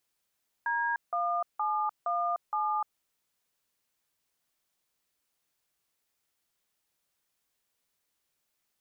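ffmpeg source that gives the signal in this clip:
ffmpeg -f lavfi -i "aevalsrc='0.0335*clip(min(mod(t,0.467),0.3-mod(t,0.467))/0.002,0,1)*(eq(floor(t/0.467),0)*(sin(2*PI*941*mod(t,0.467))+sin(2*PI*1633*mod(t,0.467)))+eq(floor(t/0.467),1)*(sin(2*PI*697*mod(t,0.467))+sin(2*PI*1209*mod(t,0.467)))+eq(floor(t/0.467),2)*(sin(2*PI*852*mod(t,0.467))+sin(2*PI*1209*mod(t,0.467)))+eq(floor(t/0.467),3)*(sin(2*PI*697*mod(t,0.467))+sin(2*PI*1209*mod(t,0.467)))+eq(floor(t/0.467),4)*(sin(2*PI*852*mod(t,0.467))+sin(2*PI*1209*mod(t,0.467))))':duration=2.335:sample_rate=44100" out.wav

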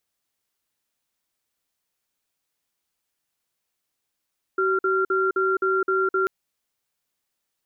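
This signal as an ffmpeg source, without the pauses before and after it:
ffmpeg -f lavfi -i "aevalsrc='0.0841*(sin(2*PI*380*t)+sin(2*PI*1380*t))*clip(min(mod(t,0.26),0.21-mod(t,0.26))/0.005,0,1)':duration=1.69:sample_rate=44100" out.wav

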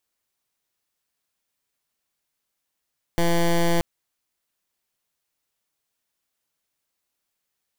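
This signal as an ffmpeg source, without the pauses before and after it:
ffmpeg -f lavfi -i "aevalsrc='0.112*(2*lt(mod(170*t,1),0.13)-1)':duration=0.63:sample_rate=44100" out.wav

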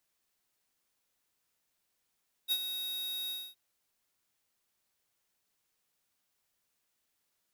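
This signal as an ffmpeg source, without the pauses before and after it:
ffmpeg -f lavfi -i "aevalsrc='0.0376*(2*lt(mod(3770*t,1),0.5)-1)':duration=1.067:sample_rate=44100,afade=type=in:duration=0.038,afade=type=out:start_time=0.038:duration=0.056:silence=0.355,afade=type=out:start_time=0.82:duration=0.247" out.wav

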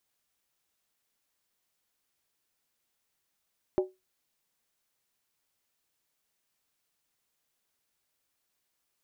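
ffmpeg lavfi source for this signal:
ffmpeg -f lavfi -i "aevalsrc='0.112*pow(10,-3*t/0.21)*sin(2*PI*373*t)+0.0447*pow(10,-3*t/0.166)*sin(2*PI*594.6*t)+0.0178*pow(10,-3*t/0.144)*sin(2*PI*796.7*t)+0.00708*pow(10,-3*t/0.139)*sin(2*PI*856.4*t)+0.00282*pow(10,-3*t/0.129)*sin(2*PI*989.6*t)':duration=0.63:sample_rate=44100" out.wav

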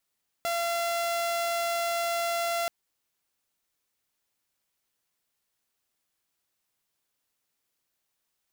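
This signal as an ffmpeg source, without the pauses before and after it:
ffmpeg -f lavfi -i "aevalsrc='0.0631*(2*mod(683*t,1)-1)':duration=2.23:sample_rate=44100" out.wav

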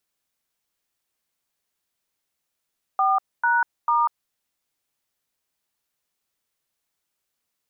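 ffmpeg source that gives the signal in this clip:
ffmpeg -f lavfi -i "aevalsrc='0.106*clip(min(mod(t,0.445),0.194-mod(t,0.445))/0.002,0,1)*(eq(floor(t/0.445),0)*(sin(2*PI*770*mod(t,0.445))+sin(2*PI*1209*mod(t,0.445)))+eq(floor(t/0.445),1)*(sin(2*PI*941*mod(t,0.445))+sin(2*PI*1477*mod(t,0.445)))+eq(floor(t/0.445),2)*(sin(2*PI*941*mod(t,0.445))+sin(2*PI*1209*mod(t,0.445))))':duration=1.335:sample_rate=44100" out.wav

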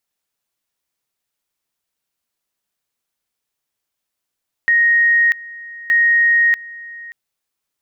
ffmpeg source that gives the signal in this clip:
ffmpeg -f lavfi -i "aevalsrc='pow(10,(-10-20.5*gte(mod(t,1.22),0.64))/20)*sin(2*PI*1870*t)':duration=2.44:sample_rate=44100" out.wav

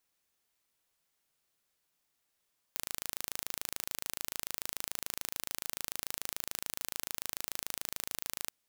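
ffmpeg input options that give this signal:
ffmpeg -f lavfi -i "aevalsrc='0.376*eq(mod(n,1639),0)':duration=5.73:sample_rate=44100" out.wav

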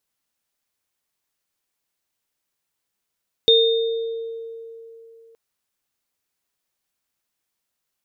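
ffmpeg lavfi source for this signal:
ffmpeg -f lavfi -i "aevalsrc='0.224*pow(10,-3*t/3.2)*sin(2*PI*456*t)+0.282*pow(10,-3*t/1.07)*sin(2*PI*3650*t)':duration=1.87:sample_rate=44100" out.wav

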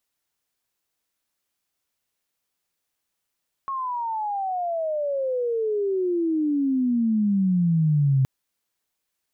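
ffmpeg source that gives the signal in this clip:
ffmpeg -f lavfi -i "aevalsrc='pow(10,(-25.5+9.5*t/4.57)/20)*sin(2*PI*1100*4.57/log(130/1100)*(exp(log(130/1100)*t/4.57)-1))':duration=4.57:sample_rate=44100" out.wav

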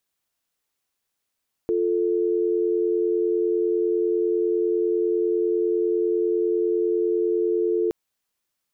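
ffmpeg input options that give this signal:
ffmpeg -f lavfi -i "aevalsrc='0.0794*(sin(2*PI*350*t)+sin(2*PI*440*t))':duration=6.22:sample_rate=44100" out.wav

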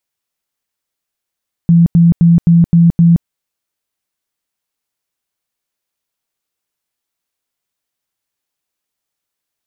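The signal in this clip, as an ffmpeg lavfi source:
ffmpeg -f lavfi -i "aevalsrc='0.631*sin(2*PI*169*mod(t,0.26))*lt(mod(t,0.26),29/169)':duration=1.56:sample_rate=44100" out.wav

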